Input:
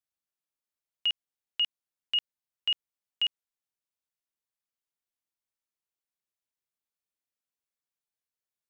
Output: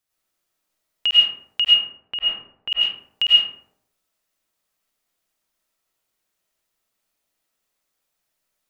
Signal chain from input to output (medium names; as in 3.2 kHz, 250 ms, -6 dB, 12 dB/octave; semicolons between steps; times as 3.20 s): 1.64–2.72 s: low-pass 1.6 kHz 12 dB/octave; in parallel at +1 dB: compression, threshold -34 dBFS, peak gain reduction 10 dB; on the sum: algorithmic reverb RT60 0.74 s, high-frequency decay 0.4×, pre-delay 65 ms, DRR -6 dB; trim +3.5 dB